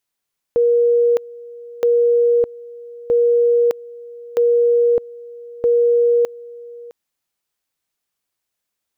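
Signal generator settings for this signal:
tone at two levels in turn 475 Hz −11 dBFS, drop 21.5 dB, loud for 0.61 s, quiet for 0.66 s, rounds 5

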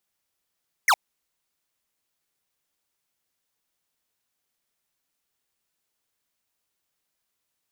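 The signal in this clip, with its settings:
single falling chirp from 2,300 Hz, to 700 Hz, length 0.06 s square, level −17 dB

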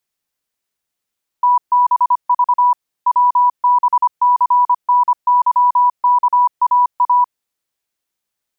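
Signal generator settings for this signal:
Morse code "TBV WBCNYKAA" 25 words per minute 983 Hz −8.5 dBFS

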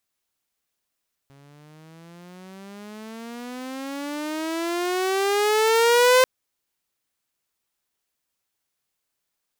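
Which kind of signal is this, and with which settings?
pitch glide with a swell saw, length 4.94 s, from 137 Hz, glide +23 semitones, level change +36.5 dB, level −10 dB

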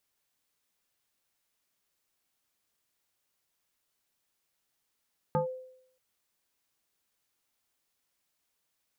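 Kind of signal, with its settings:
two-operator FM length 0.63 s, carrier 514 Hz, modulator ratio 0.7, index 1.5, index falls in 0.12 s linear, decay 0.71 s, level −22 dB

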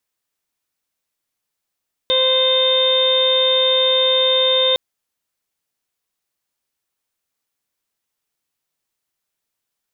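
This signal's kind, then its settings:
steady harmonic partials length 2.66 s, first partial 519 Hz, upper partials −11/−18/−14/−19/−11/2 dB, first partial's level −17 dB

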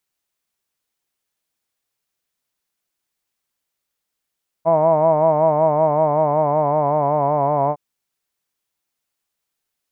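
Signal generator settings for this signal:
vowel from formants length 3.11 s, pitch 160 Hz, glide −2 semitones, vibrato depth 0.75 semitones, F1 650 Hz, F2 980 Hz, F3 2,200 Hz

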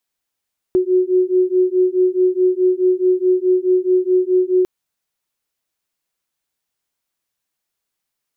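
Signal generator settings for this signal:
two tones that beat 365 Hz, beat 4.7 Hz, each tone −15.5 dBFS 3.90 s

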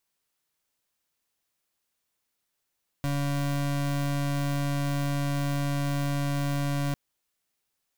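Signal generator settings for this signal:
pulse wave 142 Hz, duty 33% −27.5 dBFS 3.90 s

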